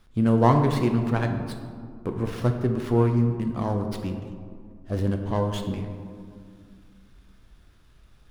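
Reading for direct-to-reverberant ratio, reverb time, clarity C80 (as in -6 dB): 4.0 dB, 2.2 s, 8.0 dB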